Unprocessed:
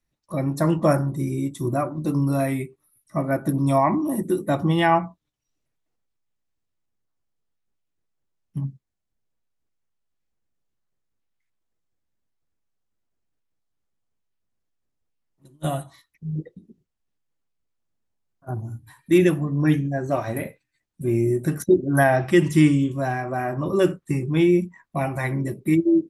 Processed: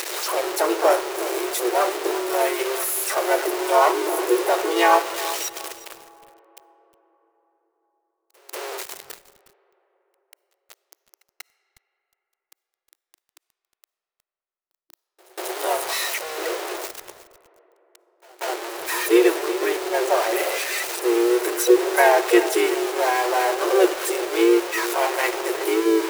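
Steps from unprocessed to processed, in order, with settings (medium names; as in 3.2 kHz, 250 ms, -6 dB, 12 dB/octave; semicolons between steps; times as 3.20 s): jump at every zero crossing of -20 dBFS; band-stop 3.4 kHz, Q 22; harmony voices -7 st -12 dB, +3 st -17 dB, +5 st -7 dB; bit crusher 6-bit; brick-wall FIR high-pass 330 Hz; pre-echo 190 ms -23 dB; reverberation RT60 4.5 s, pre-delay 15 ms, DRR 20 dB; bit-crushed delay 362 ms, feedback 35%, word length 6-bit, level -14 dB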